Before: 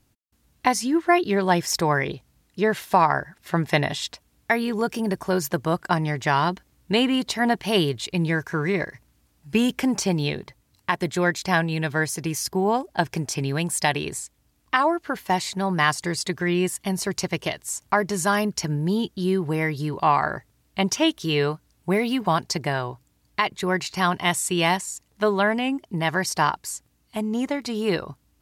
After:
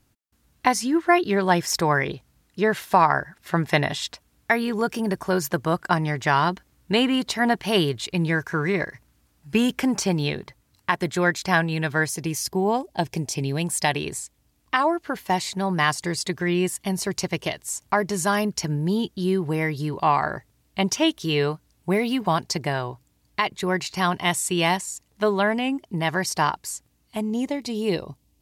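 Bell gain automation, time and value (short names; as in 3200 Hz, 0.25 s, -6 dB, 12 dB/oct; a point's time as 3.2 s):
bell 1400 Hz 0.76 oct
+2.5 dB
from 12.09 s -5 dB
from 12.87 s -11 dB
from 13.61 s -2 dB
from 27.3 s -13 dB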